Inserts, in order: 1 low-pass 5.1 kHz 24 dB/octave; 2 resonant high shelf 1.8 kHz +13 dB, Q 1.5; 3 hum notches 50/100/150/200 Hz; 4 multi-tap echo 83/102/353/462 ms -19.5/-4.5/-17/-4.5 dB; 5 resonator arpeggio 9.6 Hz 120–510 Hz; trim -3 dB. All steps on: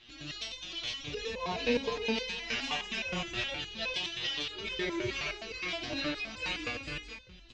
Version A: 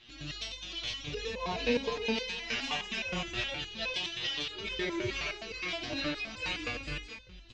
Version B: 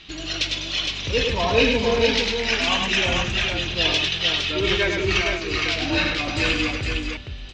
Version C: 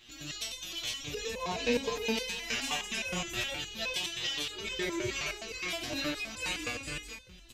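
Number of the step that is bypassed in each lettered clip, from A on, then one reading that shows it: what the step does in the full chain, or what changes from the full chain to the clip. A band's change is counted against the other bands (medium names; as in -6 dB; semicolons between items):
3, 125 Hz band +1.5 dB; 5, 125 Hz band +4.0 dB; 1, 8 kHz band +9.0 dB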